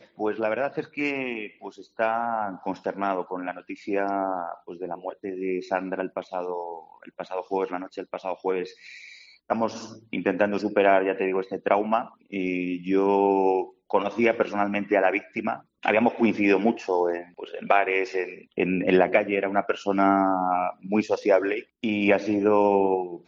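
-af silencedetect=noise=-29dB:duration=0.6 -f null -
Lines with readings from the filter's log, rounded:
silence_start: 8.63
silence_end: 9.50 | silence_duration: 0.87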